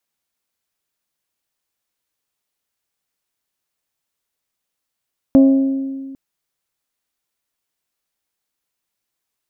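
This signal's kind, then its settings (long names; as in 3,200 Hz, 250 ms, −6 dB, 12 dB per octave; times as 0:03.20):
struck glass bell, length 0.80 s, lowest mode 270 Hz, decay 1.85 s, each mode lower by 10 dB, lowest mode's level −5 dB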